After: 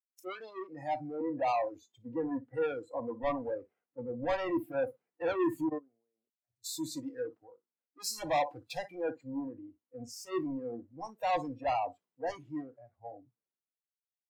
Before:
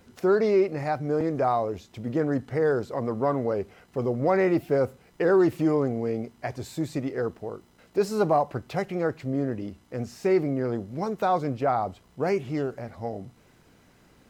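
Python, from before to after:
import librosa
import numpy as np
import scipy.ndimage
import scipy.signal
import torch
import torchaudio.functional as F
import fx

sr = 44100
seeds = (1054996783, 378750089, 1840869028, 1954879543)

p1 = scipy.signal.sosfilt(scipy.signal.butter(2, 250.0, 'highpass', fs=sr, output='sos'), x)
p2 = p1 + fx.room_flutter(p1, sr, wall_m=10.1, rt60_s=0.22, dry=0)
p3 = fx.transient(p2, sr, attack_db=3, sustain_db=-2, at=(2.26, 3.58))
p4 = fx.level_steps(p3, sr, step_db=24, at=(5.66, 6.64))
p5 = 10.0 ** (-26.0 / 20.0) * np.tanh(p4 / 10.0 ** (-26.0 / 20.0))
p6 = fx.noise_reduce_blind(p5, sr, reduce_db=21)
p7 = fx.band_widen(p6, sr, depth_pct=100)
y = F.gain(torch.from_numpy(p7), -2.0).numpy()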